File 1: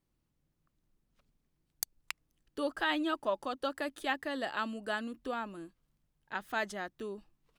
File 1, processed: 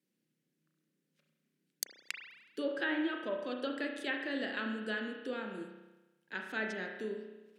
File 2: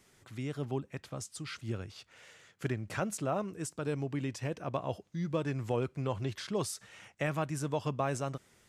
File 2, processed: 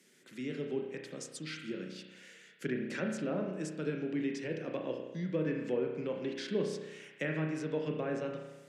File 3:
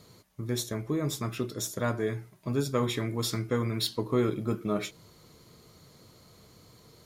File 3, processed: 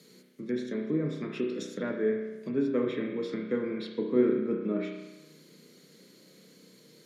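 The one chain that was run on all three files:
treble cut that deepens with the level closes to 1,700 Hz, closed at −27 dBFS
Butterworth high-pass 160 Hz 48 dB per octave
flat-topped bell 910 Hz −12 dB 1.2 octaves
spring reverb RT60 1.1 s, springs 32 ms, chirp 50 ms, DRR 2 dB

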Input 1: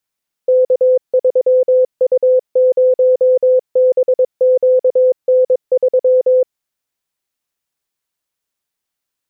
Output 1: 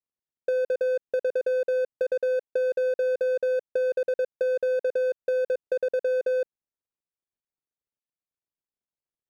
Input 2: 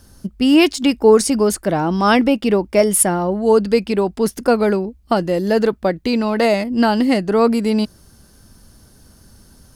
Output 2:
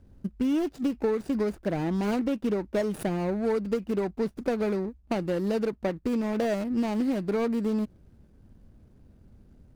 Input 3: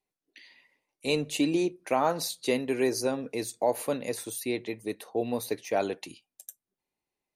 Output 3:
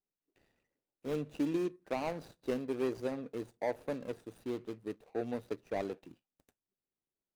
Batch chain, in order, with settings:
running median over 41 samples
downward compressor 10 to 1, threshold −17 dBFS
level −6 dB

